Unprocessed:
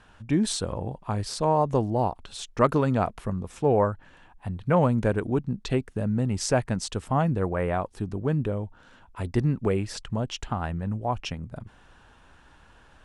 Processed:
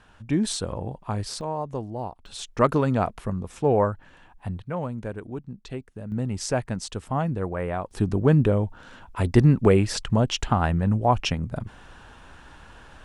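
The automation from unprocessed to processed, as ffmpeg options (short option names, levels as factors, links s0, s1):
-af "asetnsamples=n=441:p=0,asendcmd='1.41 volume volume -7.5dB;2.26 volume volume 1dB;4.62 volume volume -9dB;6.12 volume volume -2dB;7.91 volume volume 7.5dB',volume=1"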